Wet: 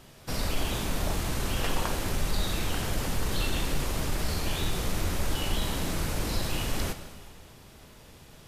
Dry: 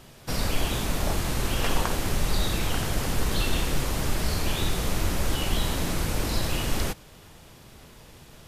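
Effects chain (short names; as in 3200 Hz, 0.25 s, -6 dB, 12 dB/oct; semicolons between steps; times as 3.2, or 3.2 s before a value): in parallel at -7 dB: soft clip -21.5 dBFS, distortion -13 dB; on the sum: plate-style reverb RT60 1.8 s, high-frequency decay 0.95×, DRR 8.5 dB; gain -6 dB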